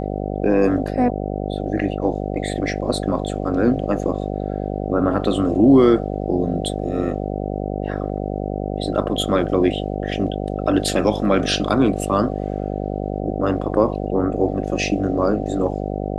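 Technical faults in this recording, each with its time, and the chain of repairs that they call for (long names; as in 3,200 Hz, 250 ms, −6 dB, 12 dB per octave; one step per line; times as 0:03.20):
mains buzz 50 Hz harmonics 15 −25 dBFS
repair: hum removal 50 Hz, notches 15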